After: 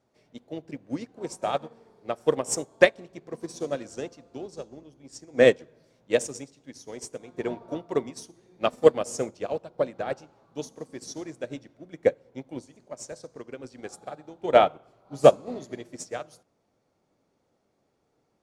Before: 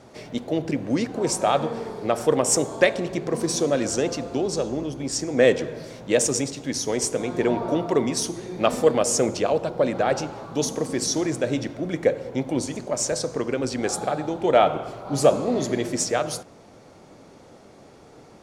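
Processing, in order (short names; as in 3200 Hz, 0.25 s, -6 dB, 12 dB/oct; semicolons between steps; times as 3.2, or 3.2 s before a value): upward expander 2.5:1, over -30 dBFS; gain +3.5 dB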